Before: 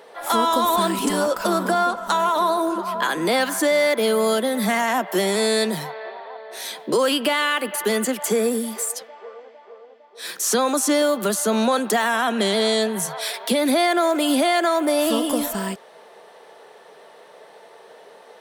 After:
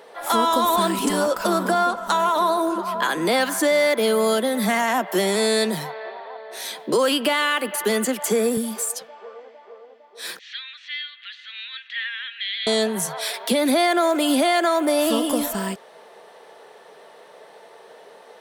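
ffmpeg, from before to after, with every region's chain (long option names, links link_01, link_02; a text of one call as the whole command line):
ffmpeg -i in.wav -filter_complex "[0:a]asettb=1/sr,asplit=3[link_01][link_02][link_03];[link_01]atrim=end=8.574[link_04];[link_02]atrim=start=8.57:end=9.35,asetpts=PTS-STARTPTS,afade=type=in:duration=0.004:curve=qsin,afade=type=out:start_time=0.776:duration=0.004:curve=qsin,lowshelf=frequency=200:width_type=q:width=1.5:gain=8.5,bandreject=frequency=2000:width=12[link_05];[link_03]atrim=start=9.346[link_06];[link_04][link_05]acrossfade=duration=0.004:curve1=hsin:curve2=qsin[link_07];[link_07][link_06]acrossfade=duration=0.004:curve1=qsin:curve2=hsin,asettb=1/sr,asplit=3[link_08][link_09][link_10];[link_08]atrim=end=10.394[link_11];[link_09]atrim=start=10.39:end=12.67,asetpts=PTS-STARTPTS,afade=type=in:duration=0.004:curve=qsin,afade=type=out:start_time=2.276:duration=0.004:curve=qsin,asuperpass=centerf=2600:order=8:qfactor=1.3,aecho=1:1:996:0.0794,atrim=end_sample=100548[link_12];[link_10]atrim=start=12.666[link_13];[link_11][link_12]acrossfade=duration=0.004:curve1=hsin:curve2=qsin[link_14];[link_14][link_13]acrossfade=duration=0.004:curve1=qsin:curve2=hsin" out.wav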